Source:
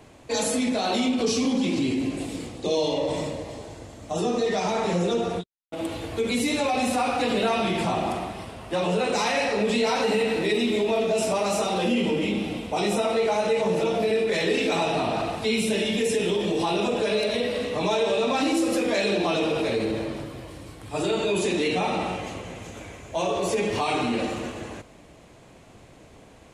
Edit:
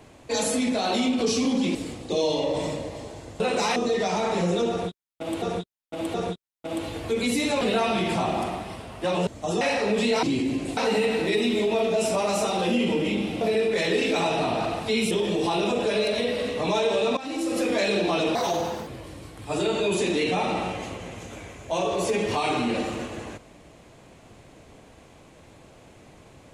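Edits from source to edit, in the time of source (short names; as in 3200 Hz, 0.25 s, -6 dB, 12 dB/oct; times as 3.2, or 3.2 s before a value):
1.75–2.29 move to 9.94
3.94–4.28 swap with 8.96–9.32
5.22–5.94 loop, 3 plays
6.69–7.3 cut
12.58–13.97 cut
15.67–16.27 cut
18.33–18.83 fade in, from -16.5 dB
19.51–20.31 speed 154%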